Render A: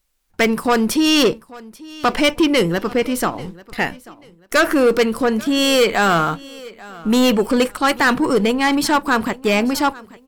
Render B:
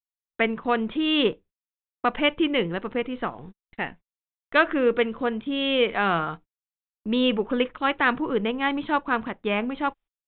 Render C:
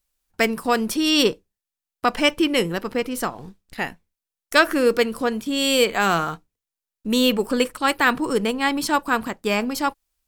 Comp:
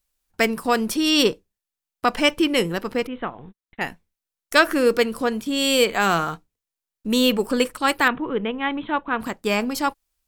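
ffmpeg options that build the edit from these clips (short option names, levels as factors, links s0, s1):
-filter_complex "[1:a]asplit=2[s0][s1];[2:a]asplit=3[s2][s3][s4];[s2]atrim=end=3.072[s5];[s0]atrim=start=3.068:end=3.812[s6];[s3]atrim=start=3.808:end=8.082[s7];[s1]atrim=start=8.078:end=9.202[s8];[s4]atrim=start=9.198[s9];[s5][s6]acrossfade=d=0.004:c1=hsin:c2=hsin[s10];[s10][s7]acrossfade=d=0.004:c1=hsin:c2=hsin[s11];[s11][s8]acrossfade=d=0.004:c1=hsin:c2=hsin[s12];[s12][s9]acrossfade=d=0.004:c1=hsin:c2=hsin"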